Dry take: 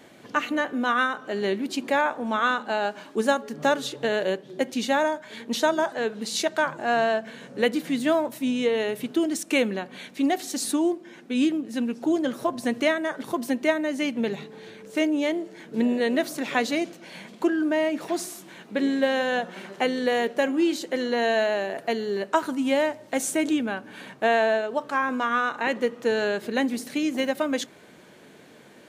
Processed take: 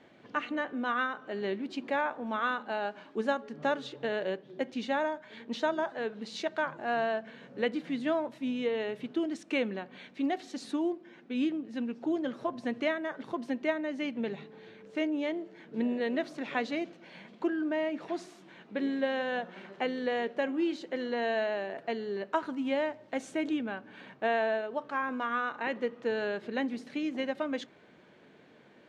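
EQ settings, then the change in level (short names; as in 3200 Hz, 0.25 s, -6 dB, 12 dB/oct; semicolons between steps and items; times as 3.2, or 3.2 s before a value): LPF 3600 Hz 12 dB/oct; -7.5 dB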